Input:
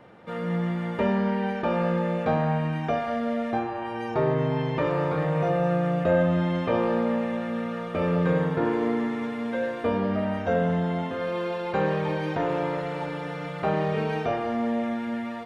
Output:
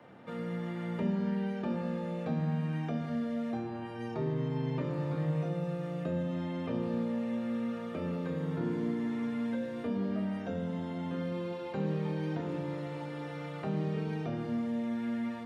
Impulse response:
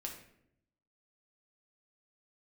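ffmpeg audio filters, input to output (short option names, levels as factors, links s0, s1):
-filter_complex "[0:a]highpass=85,acrossover=split=120|320|3600[s0][s1][s2][s3];[s0]acompressor=threshold=0.00224:ratio=4[s4];[s1]acompressor=threshold=0.0282:ratio=4[s5];[s2]acompressor=threshold=0.0112:ratio=4[s6];[s3]acompressor=threshold=0.00158:ratio=4[s7];[s4][s5][s6][s7]amix=inputs=4:normalize=0,asplit=2[s8][s9];[s9]lowshelf=f=340:t=q:w=1.5:g=7.5[s10];[1:a]atrim=start_sample=2205,asetrate=31752,aresample=44100,adelay=25[s11];[s10][s11]afir=irnorm=-1:irlink=0,volume=0.422[s12];[s8][s12]amix=inputs=2:normalize=0,volume=0.596"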